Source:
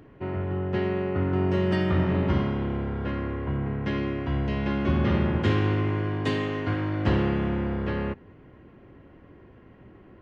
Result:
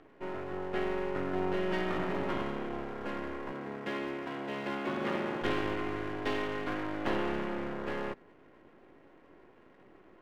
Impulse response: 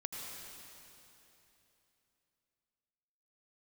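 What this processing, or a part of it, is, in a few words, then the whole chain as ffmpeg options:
crystal radio: -filter_complex "[0:a]highpass=320,lowpass=3400,aeval=exprs='if(lt(val(0),0),0.251*val(0),val(0))':channel_layout=same,asettb=1/sr,asplit=3[link_01][link_02][link_03];[link_01]atrim=end=3.524[link_04];[link_02]atrim=start=3.52:end=5.42,asetpts=PTS-STARTPTS,afade=type=in:duration=0.004:curve=qsin,afade=type=out:start_time=1.896:duration=0.004:curve=qsin,highpass=150[link_05];[link_03]atrim=start=5.416[link_06];[link_04][link_05]acrossfade=duration=0.004:curve1=hsin:curve2=qsin[link_07];[link_07][link_06]acrossfade=duration=0.004:curve1=qsin:curve2=hsin"

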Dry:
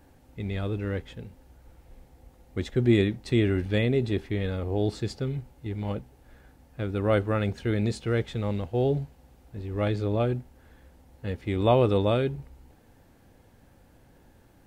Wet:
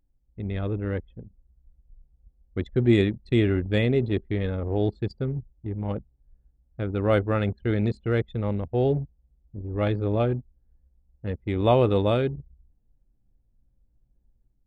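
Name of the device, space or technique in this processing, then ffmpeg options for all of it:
voice memo with heavy noise removal: -af "anlmdn=10,dynaudnorm=framelen=230:gausssize=3:maxgain=4.5dB,volume=-2.5dB"

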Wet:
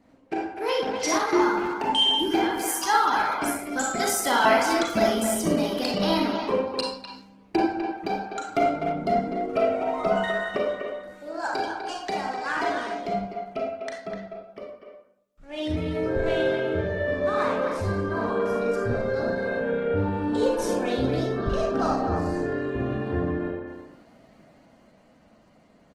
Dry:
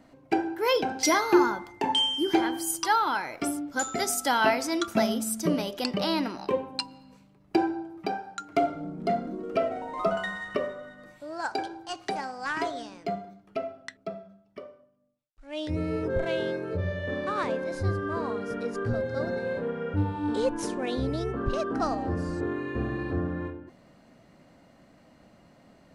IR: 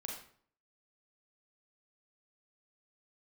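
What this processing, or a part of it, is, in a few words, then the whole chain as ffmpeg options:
speakerphone in a meeting room: -filter_complex "[1:a]atrim=start_sample=2205[link_01];[0:a][link_01]afir=irnorm=-1:irlink=0,asplit=2[link_02][link_03];[link_03]adelay=250,highpass=300,lowpass=3400,asoftclip=type=hard:threshold=-19.5dB,volume=-6dB[link_04];[link_02][link_04]amix=inputs=2:normalize=0,dynaudnorm=framelen=120:gausssize=31:maxgain=4.5dB" -ar 48000 -c:a libopus -b:a 16k

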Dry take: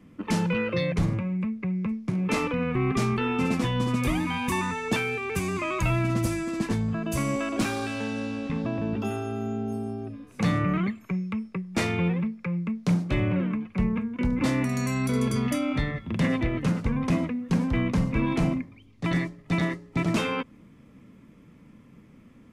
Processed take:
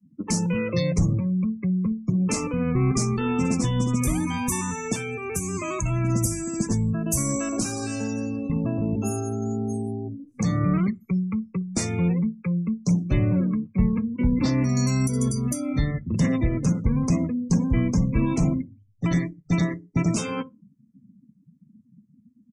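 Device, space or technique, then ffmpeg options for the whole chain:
over-bright horn tweeter: -filter_complex "[0:a]asettb=1/sr,asplit=3[link_01][link_02][link_03];[link_01]atrim=end=13.654[link_04];[link_02]atrim=start=13.65:end=15.01,asetpts=PTS-STARTPTS,afade=type=in:duration=0.004:curve=qsin,afade=type=out:start_time=1.356:duration=0.004:curve=qsin,highshelf=frequency=5700:width_type=q:width=1.5:gain=-8.5[link_05];[link_03]atrim=start=15.006[link_06];[link_04][link_05]acrossfade=duration=0.004:curve1=hsin:curve2=qsin[link_07];[link_07][link_06]acrossfade=duration=0.004:curve1=qsin:curve2=hsin,highshelf=frequency=4500:width_type=q:width=1.5:gain=11,aecho=1:1:61|122|183:0.141|0.041|0.0119,alimiter=limit=-16dB:level=0:latency=1:release=334,afftdn=noise_reduction=36:noise_floor=-36,bass=frequency=250:gain=6,treble=frequency=4000:gain=4"

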